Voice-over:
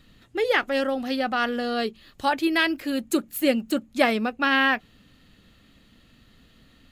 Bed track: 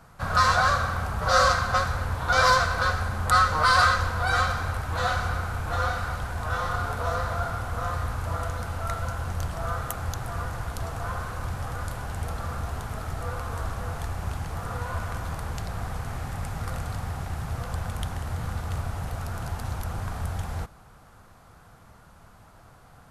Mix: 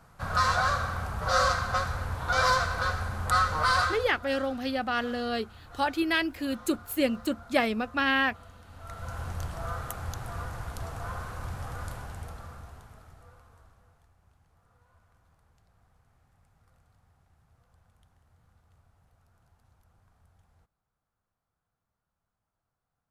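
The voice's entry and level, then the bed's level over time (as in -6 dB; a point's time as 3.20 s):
3.55 s, -4.5 dB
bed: 3.75 s -4.5 dB
4.25 s -20.5 dB
8.63 s -20.5 dB
9.17 s -5 dB
11.92 s -5 dB
14.14 s -33.5 dB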